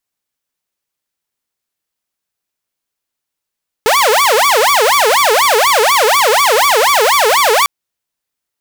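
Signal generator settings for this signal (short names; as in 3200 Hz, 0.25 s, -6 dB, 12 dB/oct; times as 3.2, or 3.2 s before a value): siren wail 422–1160 Hz 4.1/s saw -5.5 dBFS 3.80 s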